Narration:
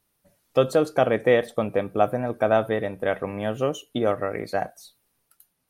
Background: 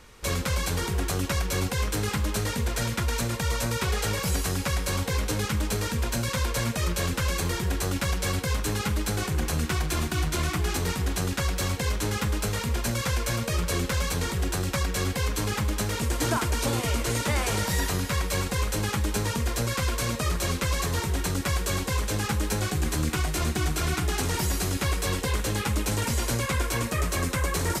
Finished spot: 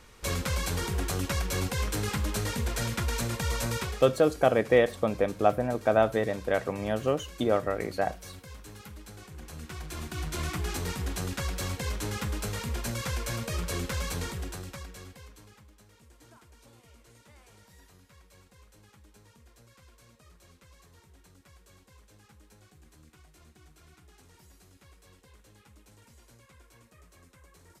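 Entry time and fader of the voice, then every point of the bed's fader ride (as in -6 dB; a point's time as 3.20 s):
3.45 s, -2.5 dB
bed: 3.77 s -3 dB
4.14 s -19 dB
9.29 s -19 dB
10.44 s -5.5 dB
14.21 s -5.5 dB
15.72 s -30.5 dB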